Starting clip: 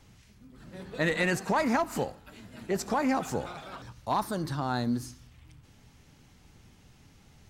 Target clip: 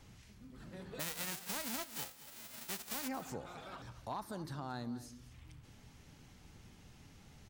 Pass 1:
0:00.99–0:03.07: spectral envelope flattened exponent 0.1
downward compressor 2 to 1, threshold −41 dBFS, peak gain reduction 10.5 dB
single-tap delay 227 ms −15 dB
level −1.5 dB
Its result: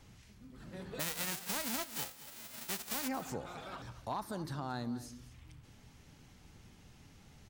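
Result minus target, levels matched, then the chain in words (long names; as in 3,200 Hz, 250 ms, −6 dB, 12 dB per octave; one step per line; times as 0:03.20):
downward compressor: peak gain reduction −3 dB
0:00.99–0:03.07: spectral envelope flattened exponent 0.1
downward compressor 2 to 1, threshold −47.5 dBFS, peak gain reduction 14 dB
single-tap delay 227 ms −15 dB
level −1.5 dB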